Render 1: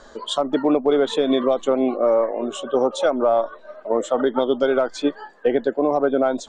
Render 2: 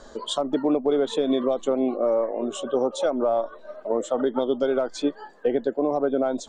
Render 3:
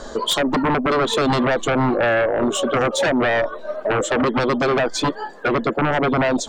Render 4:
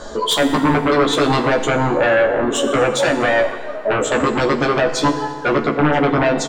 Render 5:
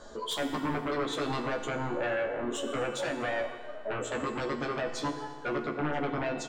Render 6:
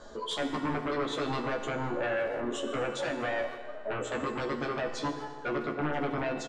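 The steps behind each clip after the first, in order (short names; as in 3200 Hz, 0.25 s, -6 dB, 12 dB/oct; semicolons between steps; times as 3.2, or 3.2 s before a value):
bell 1800 Hz -6 dB 2.3 oct; in parallel at +2.5 dB: compressor, threshold -28 dBFS, peak gain reduction 13 dB; on the sum: gain -5.5 dB
sine folder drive 11 dB, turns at -11.5 dBFS; gain -3 dB
doubler 14 ms -3 dB; FDN reverb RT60 1.8 s, low-frequency decay 0.9×, high-frequency decay 0.8×, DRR 7 dB
resonator 120 Hz, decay 1.6 s, mix 70%; gain -6.5 dB
Bessel low-pass 6900 Hz, order 8; speakerphone echo 0.15 s, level -13 dB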